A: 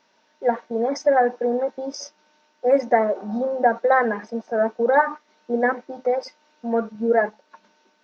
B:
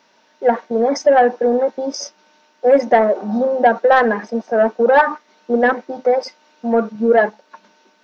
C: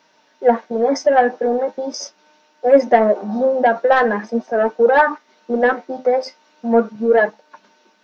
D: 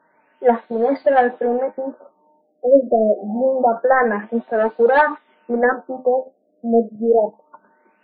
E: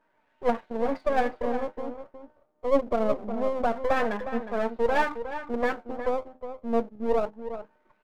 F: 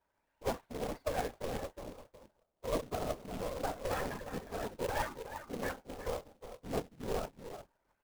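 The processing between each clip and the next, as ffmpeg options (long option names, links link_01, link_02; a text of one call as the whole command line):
ffmpeg -i in.wav -af "highpass=88,acontrast=78" out.wav
ffmpeg -i in.wav -af "flanger=delay=6.4:depth=5.3:regen=53:speed=0.41:shape=sinusoidal,volume=3dB" out.wav
ffmpeg -i in.wav -af "afftfilt=real='re*lt(b*sr/1024,690*pow(4800/690,0.5+0.5*sin(2*PI*0.26*pts/sr)))':imag='im*lt(b*sr/1024,690*pow(4800/690,0.5+0.5*sin(2*PI*0.26*pts/sr)))':win_size=1024:overlap=0.75,volume=-1dB" out.wav
ffmpeg -i in.wav -filter_complex "[0:a]aeval=exprs='if(lt(val(0),0),0.251*val(0),val(0))':channel_layout=same,asplit=2[link_01][link_02];[link_02]adelay=361.5,volume=-10dB,highshelf=frequency=4000:gain=-8.13[link_03];[link_01][link_03]amix=inputs=2:normalize=0,volume=-7dB" out.wav
ffmpeg -i in.wav -af "afftfilt=real='hypot(re,im)*cos(2*PI*random(0))':imag='hypot(re,im)*sin(2*PI*random(1))':win_size=512:overlap=0.75,acrusher=bits=2:mode=log:mix=0:aa=0.000001,volume=-6dB" out.wav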